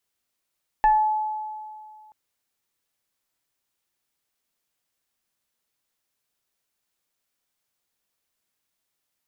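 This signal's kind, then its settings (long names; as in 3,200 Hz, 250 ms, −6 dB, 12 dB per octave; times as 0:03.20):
two-operator FM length 1.28 s, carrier 859 Hz, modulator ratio 1.03, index 0.5, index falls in 0.42 s exponential, decay 2.16 s, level −13 dB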